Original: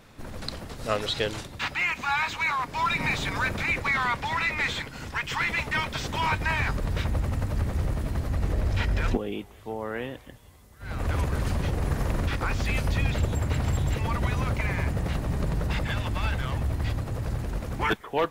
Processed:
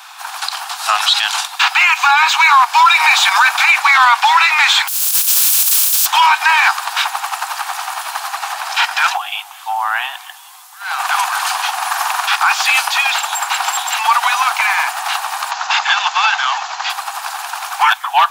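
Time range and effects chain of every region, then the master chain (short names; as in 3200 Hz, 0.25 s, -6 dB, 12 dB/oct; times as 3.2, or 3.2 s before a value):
4.87–6.05 spectral contrast lowered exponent 0.18 + pre-emphasis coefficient 0.9
15.51–16.9 brick-wall FIR low-pass 11000 Hz + careless resampling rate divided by 3×, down none, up filtered
whole clip: steep high-pass 740 Hz 96 dB/oct; bell 2000 Hz -9.5 dB 0.28 oct; maximiser +23 dB; gain -1 dB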